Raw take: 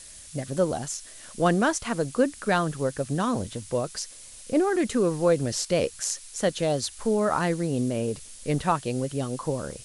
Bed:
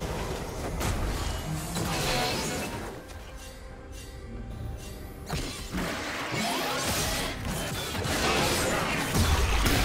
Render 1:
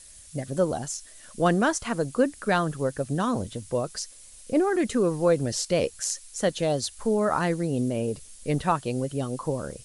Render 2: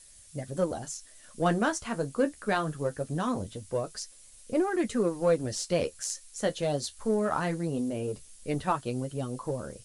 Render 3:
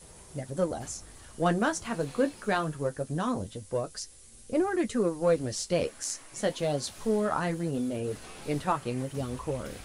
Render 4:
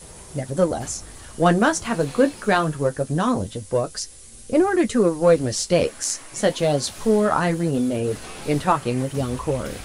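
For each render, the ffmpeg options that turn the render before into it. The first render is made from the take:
-af "afftdn=nr=6:nf=-46"
-af "flanger=delay=8.7:depth=5.5:regen=-42:speed=0.22:shape=sinusoidal,aeval=exprs='0.211*(cos(1*acos(clip(val(0)/0.211,-1,1)))-cos(1*PI/2))+0.00422*(cos(7*acos(clip(val(0)/0.211,-1,1)))-cos(7*PI/2))':c=same"
-filter_complex "[1:a]volume=0.0841[s0];[0:a][s0]amix=inputs=2:normalize=0"
-af "volume=2.82"

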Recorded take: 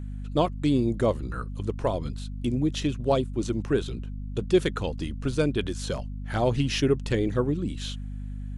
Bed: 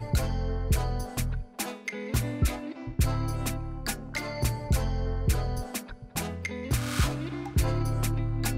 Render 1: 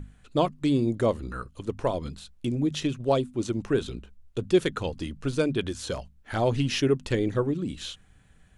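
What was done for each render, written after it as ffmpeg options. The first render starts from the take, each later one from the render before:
-af "bandreject=f=50:t=h:w=6,bandreject=f=100:t=h:w=6,bandreject=f=150:t=h:w=6,bandreject=f=200:t=h:w=6,bandreject=f=250:t=h:w=6"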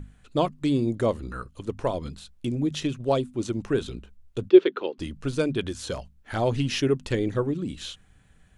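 -filter_complex "[0:a]asplit=3[s0][s1][s2];[s0]afade=t=out:st=4.48:d=0.02[s3];[s1]highpass=f=280:w=0.5412,highpass=f=280:w=1.3066,equalizer=f=380:t=q:w=4:g=9,equalizer=f=730:t=q:w=4:g=-3,equalizer=f=1800:t=q:w=4:g=-3,lowpass=f=3700:w=0.5412,lowpass=f=3700:w=1.3066,afade=t=in:st=4.48:d=0.02,afade=t=out:st=4.98:d=0.02[s4];[s2]afade=t=in:st=4.98:d=0.02[s5];[s3][s4][s5]amix=inputs=3:normalize=0"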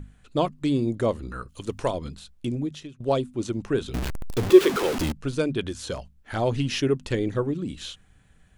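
-filter_complex "[0:a]asplit=3[s0][s1][s2];[s0]afade=t=out:st=1.48:d=0.02[s3];[s1]highshelf=f=2300:g=10,afade=t=in:st=1.48:d=0.02,afade=t=out:st=1.9:d=0.02[s4];[s2]afade=t=in:st=1.9:d=0.02[s5];[s3][s4][s5]amix=inputs=3:normalize=0,asettb=1/sr,asplit=3[s6][s7][s8];[s6]atrim=end=3.944[s9];[s7]atrim=start=3.94:end=5.12,asetpts=PTS-STARTPTS,afade=t=in:d=0.004:c=qsin,afade=t=out:st=1.176:d=0.004:c=qsin,aeval=exprs='val(0)+0.5*0.075*sgn(val(0))':c=same[s10];[s8]atrim=start=5.116[s11];[s9][s10]acrossfade=d=0.004:c1=hsin:c2=qsin[s12];[s12][s11]acrossfade=d=0.004:c1=qsin:c2=hsin,asplit=2[s13][s14];[s13]atrim=end=3,asetpts=PTS-STARTPTS,afade=t=out:st=2.55:d=0.45:c=qua:silence=0.149624[s15];[s14]atrim=start=3,asetpts=PTS-STARTPTS,afade=t=in:d=0.004:c=hsin:silence=0.149624[s16];[s15][s16]concat=n=2:v=0:a=1"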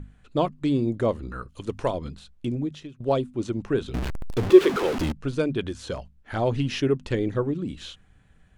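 -af "aemphasis=mode=reproduction:type=cd"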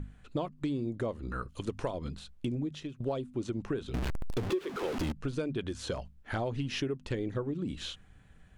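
-af "acompressor=threshold=0.0316:ratio=8"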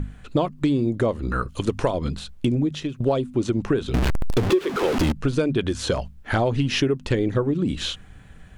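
-af "volume=3.98"

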